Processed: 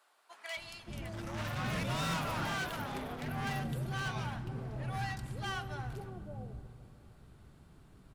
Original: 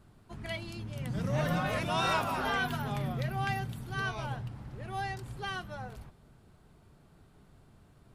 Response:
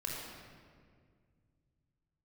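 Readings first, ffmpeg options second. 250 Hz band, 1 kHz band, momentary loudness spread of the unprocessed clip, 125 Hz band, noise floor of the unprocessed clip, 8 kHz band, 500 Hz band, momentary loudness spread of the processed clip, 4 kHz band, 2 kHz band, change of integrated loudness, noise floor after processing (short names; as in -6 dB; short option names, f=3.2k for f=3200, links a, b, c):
-3.0 dB, -5.5 dB, 13 LU, -2.5 dB, -61 dBFS, +0.5 dB, -6.0 dB, 12 LU, -2.5 dB, -4.0 dB, -4.0 dB, -60 dBFS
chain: -filter_complex "[0:a]volume=34.5dB,asoftclip=hard,volume=-34.5dB,acrossover=split=620[a][b];[a]adelay=570[c];[c][b]amix=inputs=2:normalize=0,asplit=2[d][e];[1:a]atrim=start_sample=2205,asetrate=22491,aresample=44100[f];[e][f]afir=irnorm=-1:irlink=0,volume=-19dB[g];[d][g]amix=inputs=2:normalize=0"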